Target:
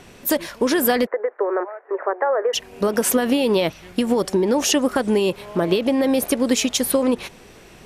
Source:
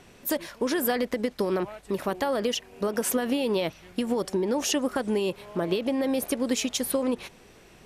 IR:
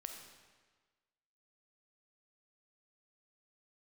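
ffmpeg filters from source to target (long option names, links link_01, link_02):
-filter_complex "[0:a]asplit=3[link_01][link_02][link_03];[link_01]afade=type=out:start_time=1.05:duration=0.02[link_04];[link_02]asuperpass=centerf=850:order=12:qfactor=0.57,afade=type=in:start_time=1.05:duration=0.02,afade=type=out:start_time=2.53:duration=0.02[link_05];[link_03]afade=type=in:start_time=2.53:duration=0.02[link_06];[link_04][link_05][link_06]amix=inputs=3:normalize=0,volume=7.5dB"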